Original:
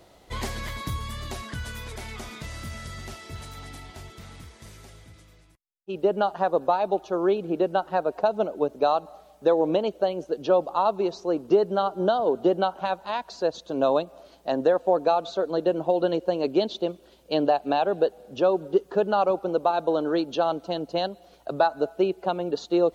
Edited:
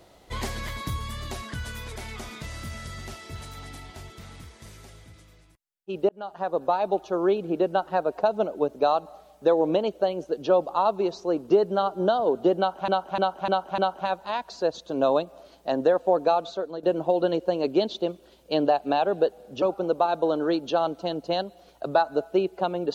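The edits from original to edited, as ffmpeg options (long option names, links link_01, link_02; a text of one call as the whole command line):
ffmpeg -i in.wav -filter_complex "[0:a]asplit=8[link_01][link_02][link_03][link_04][link_05][link_06][link_07][link_08];[link_01]atrim=end=6.09,asetpts=PTS-STARTPTS,afade=type=out:start_time=6.086:duration=0.004:curve=hsin[link_09];[link_02]atrim=start=6.09:end=12.882,asetpts=PTS-STARTPTS,afade=type=in:duration=0.94:curve=qsin[link_10];[link_03]atrim=start=12.578:end=12.882[link_11];[link_04]atrim=start=12.578:end=12.882[link_12];[link_05]atrim=start=12.578:end=12.882[link_13];[link_06]atrim=start=12.578:end=15.63,asetpts=PTS-STARTPTS,afade=type=out:start_time=2.592:duration=0.46:silence=0.251189[link_14];[link_07]atrim=start=15.63:end=18.422,asetpts=PTS-STARTPTS,afade=type=in:duration=0.004:curve=hsin:silence=0.251189[link_15];[link_08]atrim=start=19.268[link_16];[link_09][link_10]concat=n=2:v=0:a=1[link_17];[link_17][link_11]acrossfade=duration=0.004:curve1=hsin:curve2=hsin[link_18];[link_18][link_12]acrossfade=duration=0.004:curve1=hsin:curve2=hsin[link_19];[link_19][link_13]acrossfade=duration=0.004:curve1=hsin:curve2=hsin[link_20];[link_14][link_15]concat=n=2:v=0:a=1[link_21];[link_20][link_21]acrossfade=duration=0.004:curve1=hsin:curve2=hsin[link_22];[link_22][link_16]acrossfade=duration=0.004:curve1=hsin:curve2=hsin" out.wav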